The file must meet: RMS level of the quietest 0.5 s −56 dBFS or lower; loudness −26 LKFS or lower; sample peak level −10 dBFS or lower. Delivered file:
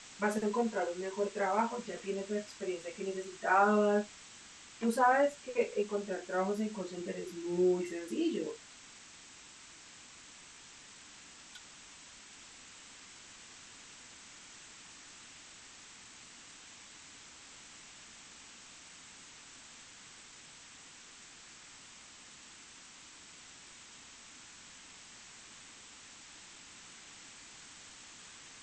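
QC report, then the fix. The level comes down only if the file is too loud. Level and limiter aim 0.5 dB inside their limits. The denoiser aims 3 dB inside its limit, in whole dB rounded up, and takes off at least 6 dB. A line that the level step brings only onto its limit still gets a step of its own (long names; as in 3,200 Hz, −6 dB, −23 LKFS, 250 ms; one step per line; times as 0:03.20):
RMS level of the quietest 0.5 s −55 dBFS: out of spec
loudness −33.5 LKFS: in spec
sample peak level −16.0 dBFS: in spec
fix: broadband denoise 6 dB, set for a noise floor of −55 dBFS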